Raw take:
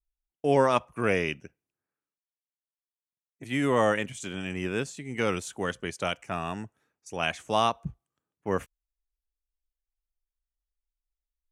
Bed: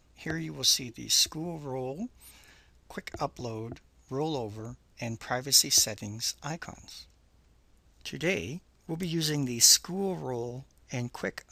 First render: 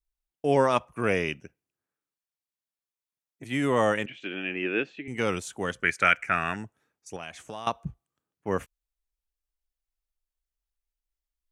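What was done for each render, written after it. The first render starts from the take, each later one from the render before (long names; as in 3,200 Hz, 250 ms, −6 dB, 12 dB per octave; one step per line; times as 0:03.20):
0:04.06–0:05.08: loudspeaker in its box 260–3,400 Hz, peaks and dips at 320 Hz +9 dB, 1,000 Hz −7 dB, 1,700 Hz +5 dB, 2,600 Hz +9 dB
0:05.83–0:06.56: flat-topped bell 1,800 Hz +15 dB 1.1 octaves
0:07.16–0:07.67: downward compressor 4 to 1, threshold −36 dBFS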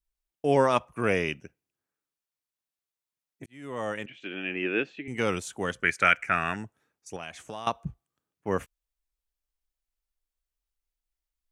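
0:03.46–0:04.56: fade in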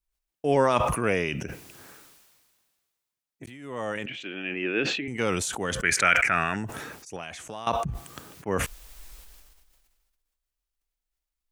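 level that may fall only so fast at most 32 dB per second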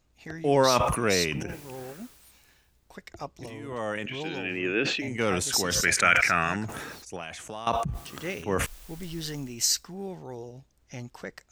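mix in bed −5.5 dB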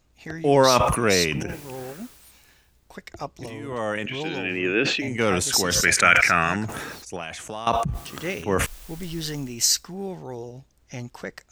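level +4.5 dB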